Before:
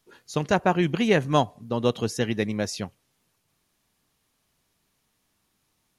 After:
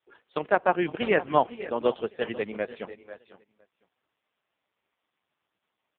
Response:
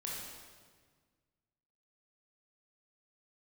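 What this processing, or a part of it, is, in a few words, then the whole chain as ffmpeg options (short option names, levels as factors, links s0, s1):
satellite phone: -filter_complex "[0:a]asettb=1/sr,asplit=3[s0][s1][s2];[s0]atrim=end=1.994[s3];[s1]atrim=start=1.99:end=2.66,asetpts=PTS-STARTPTS,afade=t=in:d=0.004:c=qsin,afade=t=out:st=0.666:d=0.004:c=qsin,adynamicequalizer=threshold=0.00562:dfrequency=310:dqfactor=4.7:tfrequency=310:tqfactor=4.7:attack=5:release=100:ratio=0.375:range=2.5:mode=cutabove:tftype=bell[s4];[s2]atrim=start=2.656[s5];[s3][s4]acrossfade=d=0.004:c1=hsin:c2=qsin[s6];[s6][s5]acrossfade=d=0.004:c1=qsin:c2=hsin,highpass=370,lowpass=3300,aecho=1:1:492:0.141,aecho=1:1:513:0.168,volume=1.19" -ar 8000 -c:a libopencore_amrnb -b:a 4750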